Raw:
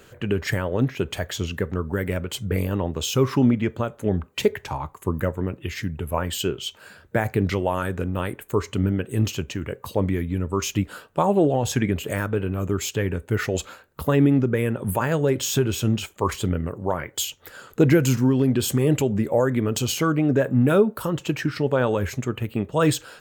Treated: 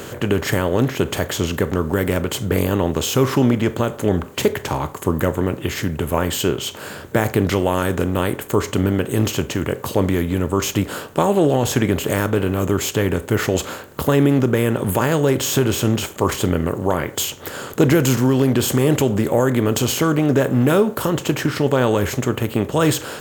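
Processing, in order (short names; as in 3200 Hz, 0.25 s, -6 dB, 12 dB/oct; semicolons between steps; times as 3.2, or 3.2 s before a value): per-bin compression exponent 0.6; high shelf 11000 Hz +5.5 dB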